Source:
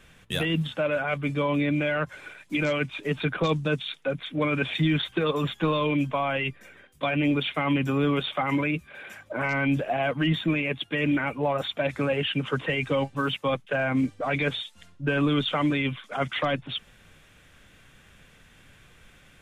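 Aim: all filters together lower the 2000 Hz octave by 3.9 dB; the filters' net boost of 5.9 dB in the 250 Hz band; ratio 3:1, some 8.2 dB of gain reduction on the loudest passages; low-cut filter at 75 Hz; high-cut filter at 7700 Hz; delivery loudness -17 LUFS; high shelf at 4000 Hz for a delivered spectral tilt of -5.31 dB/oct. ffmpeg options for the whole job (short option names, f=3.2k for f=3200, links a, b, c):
-af "highpass=75,lowpass=7.7k,equalizer=f=250:t=o:g=7.5,equalizer=f=2k:t=o:g=-4.5,highshelf=f=4k:g=-3.5,acompressor=threshold=-26dB:ratio=3,volume=12.5dB"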